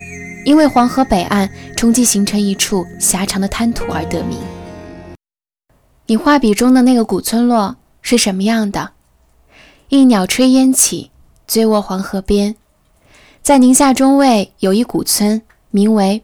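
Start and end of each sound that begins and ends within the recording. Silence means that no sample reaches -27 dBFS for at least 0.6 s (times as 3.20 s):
6.09–8.87 s
9.92–12.52 s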